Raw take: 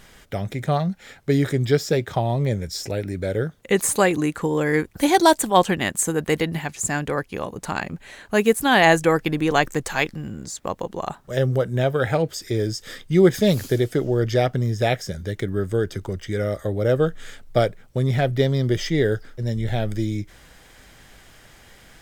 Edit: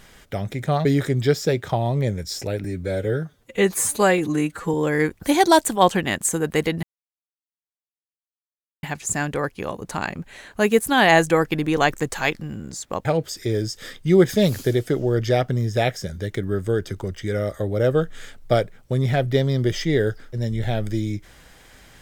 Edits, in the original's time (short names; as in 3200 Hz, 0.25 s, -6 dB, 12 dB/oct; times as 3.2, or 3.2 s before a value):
0.85–1.29 cut
3.08–4.48 stretch 1.5×
6.57 insert silence 2.00 s
10.79–12.1 cut